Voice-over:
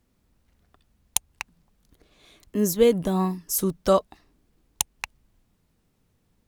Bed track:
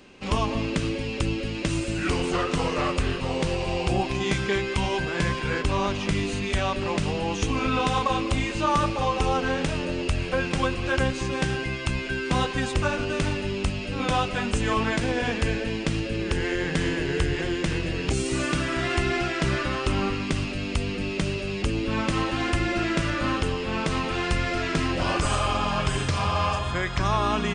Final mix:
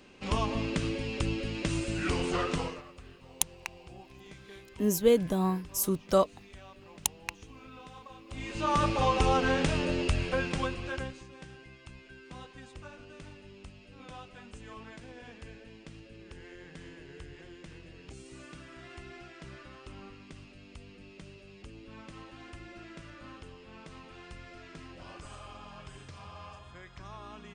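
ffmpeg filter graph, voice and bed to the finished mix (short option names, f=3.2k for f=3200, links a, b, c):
-filter_complex "[0:a]adelay=2250,volume=-4.5dB[a];[1:a]volume=18.5dB,afade=t=out:st=2.52:d=0.3:silence=0.1,afade=t=in:st=8.27:d=0.7:silence=0.0668344,afade=t=out:st=9.92:d=1.34:silence=0.0891251[b];[a][b]amix=inputs=2:normalize=0"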